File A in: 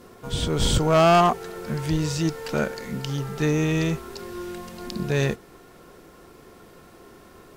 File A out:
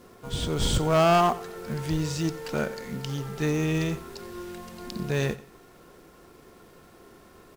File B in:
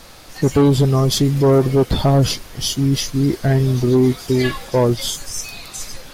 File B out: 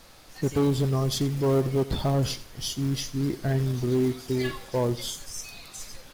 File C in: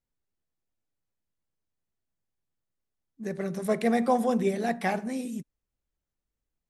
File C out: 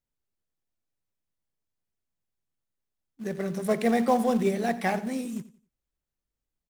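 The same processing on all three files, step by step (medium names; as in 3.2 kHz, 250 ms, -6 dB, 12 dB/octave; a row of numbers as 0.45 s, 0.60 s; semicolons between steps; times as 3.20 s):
in parallel at -9 dB: companded quantiser 4-bit; on the sum: feedback delay 89 ms, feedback 29%, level -17.5 dB; normalise loudness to -27 LUFS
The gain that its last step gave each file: -6.5 dB, -13.0 dB, -2.0 dB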